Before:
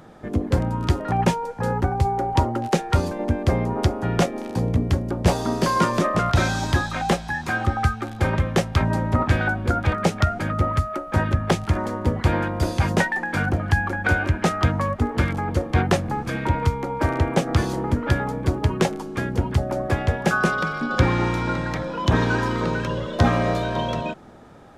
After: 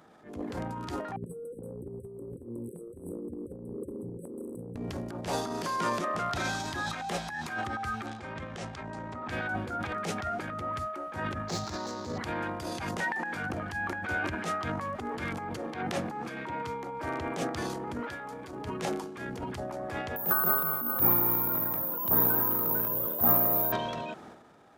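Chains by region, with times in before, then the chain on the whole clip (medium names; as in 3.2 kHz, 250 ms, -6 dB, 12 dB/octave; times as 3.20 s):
1.16–4.76 s: compressor with a negative ratio -25 dBFS, ratio -0.5 + brick-wall FIR band-stop 550–7800 Hz
8.06–9.30 s: low-pass 8.5 kHz 24 dB/octave + compression, threshold -22 dBFS
11.48–12.18 s: median filter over 15 samples + high-order bell 5.3 kHz +15.5 dB 1.2 oct
15.57–16.82 s: high-pass 140 Hz + treble shelf 4.9 kHz -4.5 dB
18.03–18.51 s: bass shelf 400 Hz -8.5 dB + compression 3:1, threshold -27 dBFS
20.16–23.72 s: high-order bell 4.1 kHz -13 dB 2.9 oct + careless resampling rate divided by 3×, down none, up zero stuff
whole clip: high-pass 290 Hz 6 dB/octave; band-stop 540 Hz, Q 15; transient shaper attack -10 dB, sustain +10 dB; trim -8.5 dB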